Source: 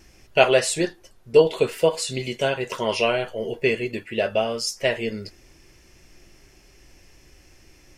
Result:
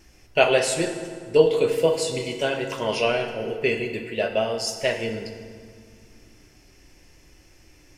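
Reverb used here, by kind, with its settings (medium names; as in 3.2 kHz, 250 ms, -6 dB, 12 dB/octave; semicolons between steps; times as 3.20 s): FDN reverb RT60 2 s, low-frequency decay 1.45×, high-frequency decay 0.7×, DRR 5.5 dB; trim -2 dB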